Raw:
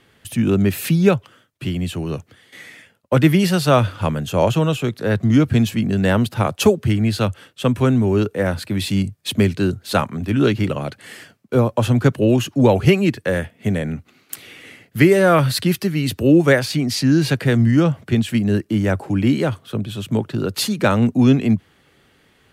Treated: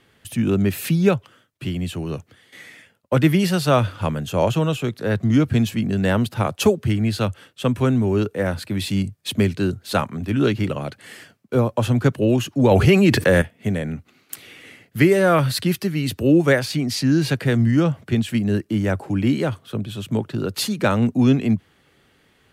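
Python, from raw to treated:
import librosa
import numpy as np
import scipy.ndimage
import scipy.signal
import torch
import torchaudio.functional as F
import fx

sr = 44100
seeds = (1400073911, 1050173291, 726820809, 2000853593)

y = fx.env_flatten(x, sr, amount_pct=70, at=(12.71, 13.42))
y = F.gain(torch.from_numpy(y), -2.5).numpy()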